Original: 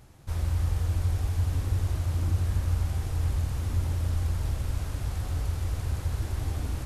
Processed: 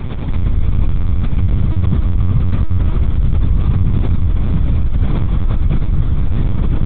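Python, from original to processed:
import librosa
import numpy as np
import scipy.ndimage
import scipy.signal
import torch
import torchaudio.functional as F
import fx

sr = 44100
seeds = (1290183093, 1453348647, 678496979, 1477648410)

y = fx.cvsd(x, sr, bps=32000)
y = fx.low_shelf(y, sr, hz=450.0, db=9.0)
y = y + 0.34 * np.pad(y, (int(0.9 * sr / 1000.0), 0))[:len(y)]
y = fx.echo_feedback(y, sr, ms=71, feedback_pct=33, wet_db=-14.5)
y = fx.rev_fdn(y, sr, rt60_s=2.0, lf_ratio=1.0, hf_ratio=0.45, size_ms=25.0, drr_db=-7.0)
y = fx.lpc_vocoder(y, sr, seeds[0], excitation='pitch_kept', order=10)
y = fx.env_flatten(y, sr, amount_pct=70)
y = y * librosa.db_to_amplitude(-6.5)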